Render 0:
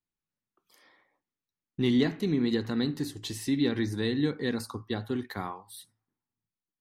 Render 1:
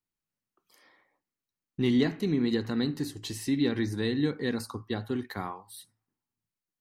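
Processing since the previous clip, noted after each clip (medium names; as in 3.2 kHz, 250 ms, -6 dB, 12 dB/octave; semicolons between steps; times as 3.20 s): band-stop 3.5 kHz, Q 15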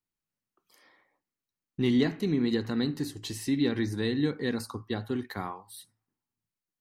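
no audible change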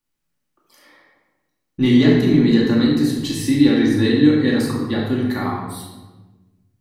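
simulated room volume 710 m³, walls mixed, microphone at 2.4 m; trim +6 dB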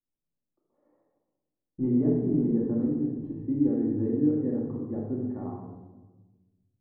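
four-pole ladder low-pass 810 Hz, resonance 20%; trim -6.5 dB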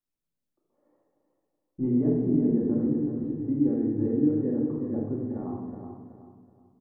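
feedback delay 375 ms, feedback 34%, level -7 dB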